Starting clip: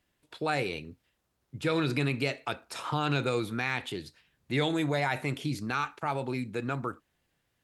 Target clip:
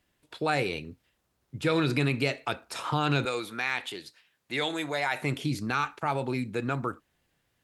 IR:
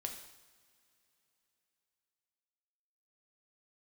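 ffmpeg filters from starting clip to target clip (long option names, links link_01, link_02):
-filter_complex "[0:a]asettb=1/sr,asplit=3[link_01][link_02][link_03];[link_01]atrim=end=3.254[link_04];[link_02]atrim=start=3.25:end=5.22,asetpts=PTS-STARTPTS,afade=type=in:duration=0.004:curve=qsin,afade=type=out:start_time=1.966:duration=0.004:curve=qsin,highpass=frequency=690:poles=1[link_05];[link_03]atrim=start=5.216[link_06];[link_04][link_05]acrossfade=duration=0.004:curve1=hsin:curve2=qsin[link_07];[link_07][link_06]acrossfade=duration=0.004:curve1=qsin:curve2=hsin,volume=2.5dB"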